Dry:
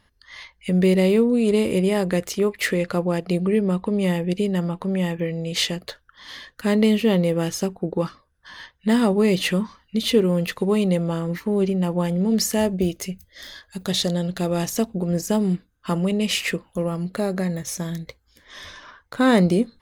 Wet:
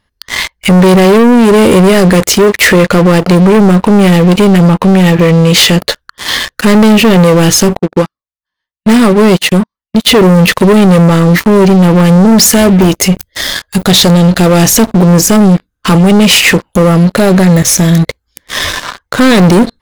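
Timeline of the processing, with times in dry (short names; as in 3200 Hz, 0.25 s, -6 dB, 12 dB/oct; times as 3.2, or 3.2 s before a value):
7.79–10.07 upward expander 2.5:1, over -40 dBFS
whole clip: sample leveller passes 5; maximiser +10.5 dB; gain -1 dB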